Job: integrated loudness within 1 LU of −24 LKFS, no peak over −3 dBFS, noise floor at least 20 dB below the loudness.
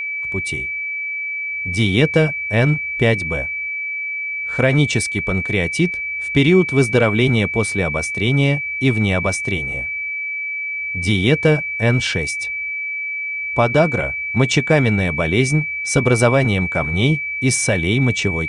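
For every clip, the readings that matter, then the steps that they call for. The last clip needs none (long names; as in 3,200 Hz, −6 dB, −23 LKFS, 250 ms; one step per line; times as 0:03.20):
interfering tone 2,300 Hz; level of the tone −22 dBFS; integrated loudness −18.0 LKFS; sample peak −2.0 dBFS; target loudness −24.0 LKFS
→ notch filter 2,300 Hz, Q 30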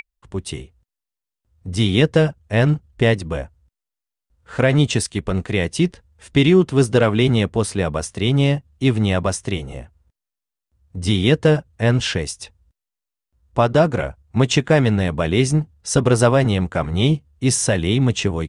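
interfering tone none found; integrated loudness −19.0 LKFS; sample peak −2.0 dBFS; target loudness −24.0 LKFS
→ level −5 dB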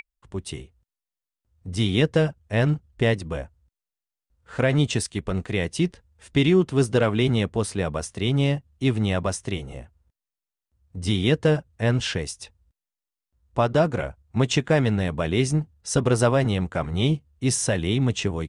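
integrated loudness −24.0 LKFS; sample peak −7.0 dBFS; background noise floor −89 dBFS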